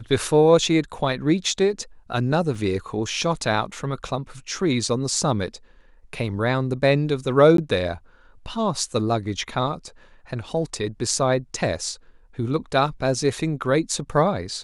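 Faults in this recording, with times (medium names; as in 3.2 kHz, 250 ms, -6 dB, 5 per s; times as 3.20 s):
2.55 s: dropout 3.3 ms
7.57–7.58 s: dropout 13 ms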